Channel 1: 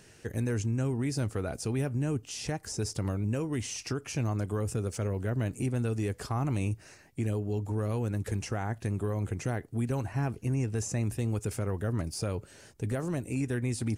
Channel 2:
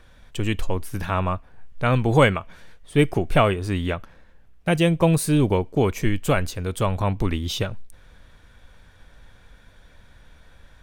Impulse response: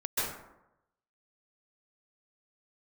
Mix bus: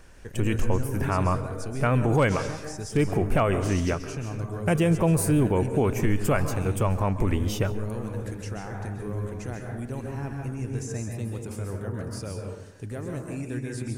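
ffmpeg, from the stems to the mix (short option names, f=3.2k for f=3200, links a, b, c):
-filter_complex "[0:a]volume=-7dB,asplit=2[a][b];[b]volume=-5dB[c];[1:a]equalizer=f=3.8k:w=2.1:g=-14,volume=-0.5dB,asplit=2[d][e];[e]volume=-22dB[f];[2:a]atrim=start_sample=2205[g];[c][f]amix=inputs=2:normalize=0[h];[h][g]afir=irnorm=-1:irlink=0[i];[a][d][i]amix=inputs=3:normalize=0,asoftclip=type=hard:threshold=-7dB,alimiter=limit=-13dB:level=0:latency=1:release=34"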